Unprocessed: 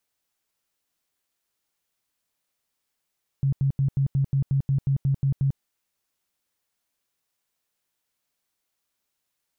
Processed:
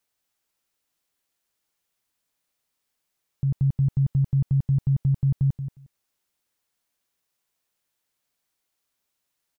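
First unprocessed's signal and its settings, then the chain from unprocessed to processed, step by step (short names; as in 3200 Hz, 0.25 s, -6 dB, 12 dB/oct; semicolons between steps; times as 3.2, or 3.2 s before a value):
tone bursts 137 Hz, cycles 13, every 0.18 s, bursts 12, -18.5 dBFS
feedback echo 0.179 s, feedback 15%, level -9 dB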